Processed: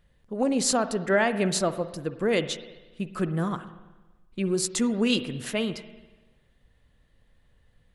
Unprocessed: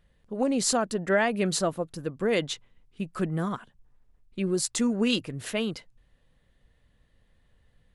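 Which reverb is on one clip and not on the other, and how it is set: spring tank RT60 1.2 s, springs 48/56 ms, chirp 70 ms, DRR 11.5 dB; gain +1 dB

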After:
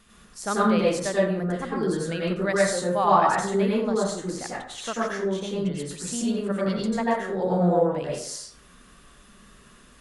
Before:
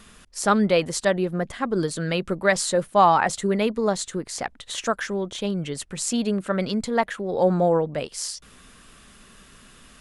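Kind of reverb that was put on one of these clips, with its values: plate-style reverb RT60 0.63 s, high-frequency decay 0.5×, pre-delay 80 ms, DRR -5.5 dB; gain -9 dB

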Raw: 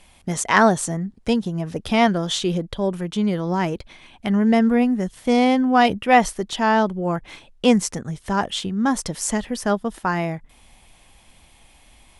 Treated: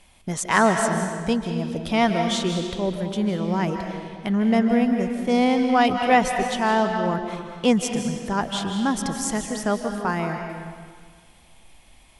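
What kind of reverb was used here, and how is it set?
digital reverb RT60 1.8 s, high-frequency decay 0.85×, pre-delay 0.115 s, DRR 4.5 dB; gain -3 dB

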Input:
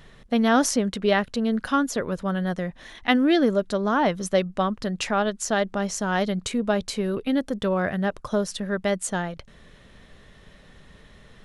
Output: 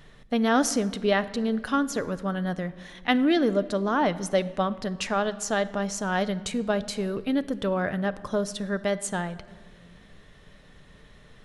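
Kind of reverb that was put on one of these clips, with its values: shoebox room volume 2000 m³, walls mixed, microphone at 0.41 m; gain -2.5 dB

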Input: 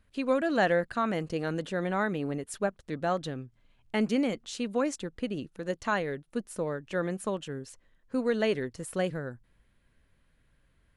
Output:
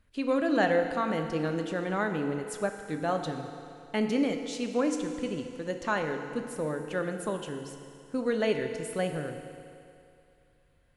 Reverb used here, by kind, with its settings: FDN reverb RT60 2.6 s, low-frequency decay 0.8×, high-frequency decay 0.95×, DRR 5 dB; gain -1 dB

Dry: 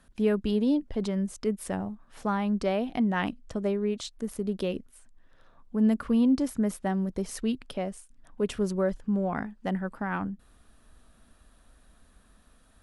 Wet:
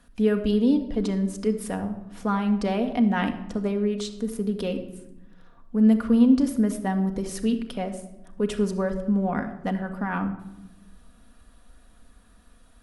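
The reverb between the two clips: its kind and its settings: shoebox room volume 3800 m³, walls furnished, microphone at 1.8 m; gain +1.5 dB

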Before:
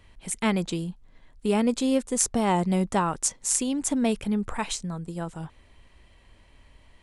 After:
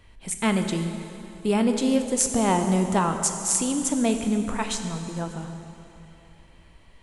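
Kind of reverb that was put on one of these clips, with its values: plate-style reverb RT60 3 s, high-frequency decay 0.85×, DRR 5.5 dB; gain +1 dB

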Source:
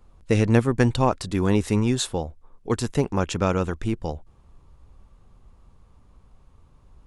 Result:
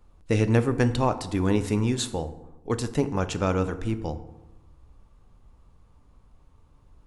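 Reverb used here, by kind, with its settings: FDN reverb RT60 1 s, low-frequency decay 1.2×, high-frequency decay 0.55×, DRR 9.5 dB; gain -3 dB

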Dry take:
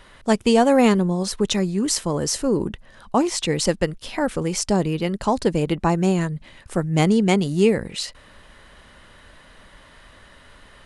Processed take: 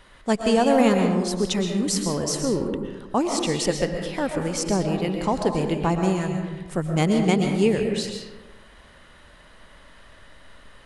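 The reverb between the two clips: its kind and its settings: digital reverb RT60 1.2 s, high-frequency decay 0.5×, pre-delay 85 ms, DRR 3.5 dB; gain -3.5 dB

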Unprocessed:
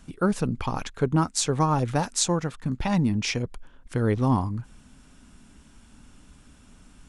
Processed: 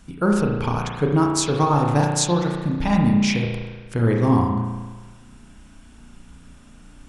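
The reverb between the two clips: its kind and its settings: spring tank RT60 1.3 s, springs 34 ms, chirp 60 ms, DRR 0 dB; gain +2 dB

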